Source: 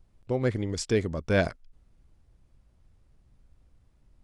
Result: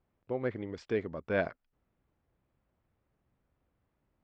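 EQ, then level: high-pass 330 Hz 6 dB/octave; low-pass 2.4 kHz 12 dB/octave; distance through air 61 m; -3.5 dB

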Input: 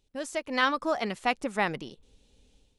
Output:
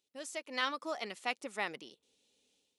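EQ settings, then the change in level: high-pass 390 Hz 12 dB/octave; peaking EQ 830 Hz -7 dB 2.4 oct; band-stop 1.6 kHz, Q 16; -3.5 dB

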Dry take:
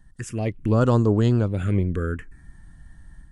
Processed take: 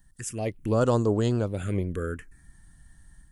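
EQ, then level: dynamic bell 590 Hz, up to +7 dB, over -35 dBFS, Q 0.83; treble shelf 2.7 kHz +7 dB; treble shelf 8 kHz +11.5 dB; -7.5 dB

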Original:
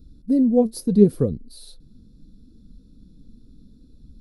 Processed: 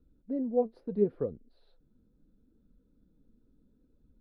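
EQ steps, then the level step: distance through air 360 m; three-band isolator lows -15 dB, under 420 Hz, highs -17 dB, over 2.4 kHz; band-stop 1.1 kHz, Q 17; -4.0 dB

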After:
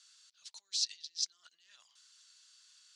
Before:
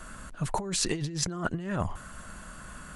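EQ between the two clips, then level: Butterworth band-pass 4.7 kHz, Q 2; 0.0 dB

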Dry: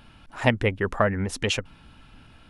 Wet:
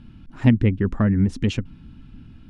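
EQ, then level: low-pass 7.1 kHz 12 dB/octave; resonant low shelf 390 Hz +14 dB, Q 1.5; -6.5 dB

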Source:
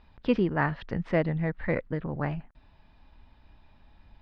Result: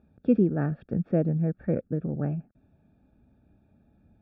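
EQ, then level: boxcar filter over 44 samples; high-pass 110 Hz 12 dB/octave; peaking EQ 210 Hz +2.5 dB 0.42 oct; +4.0 dB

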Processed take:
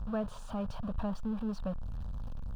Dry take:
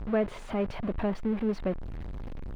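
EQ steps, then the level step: peaking EQ 720 Hz -6.5 dB 0.9 oct; static phaser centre 870 Hz, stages 4; 0.0 dB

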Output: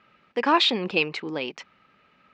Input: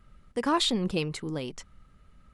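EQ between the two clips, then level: cabinet simulation 300–4900 Hz, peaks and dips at 850 Hz +4 dB, 1.7 kHz +3 dB, 2.5 kHz +10 dB; +5.0 dB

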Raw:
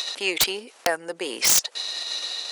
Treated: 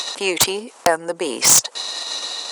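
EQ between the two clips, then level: graphic EQ 125/250/500/1000/8000 Hz +11/+7/+4/+10/+9 dB; 0.0 dB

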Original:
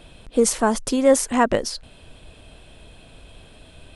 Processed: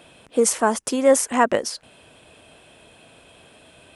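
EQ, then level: high-pass 99 Hz 12 dB/octave; bass shelf 250 Hz -9.5 dB; peaking EQ 4.1 kHz -5.5 dB 0.7 oct; +2.0 dB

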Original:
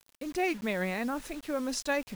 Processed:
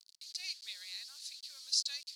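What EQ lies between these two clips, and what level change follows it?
ladder band-pass 4.7 kHz, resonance 75%; treble shelf 3.8 kHz +10 dB; +5.0 dB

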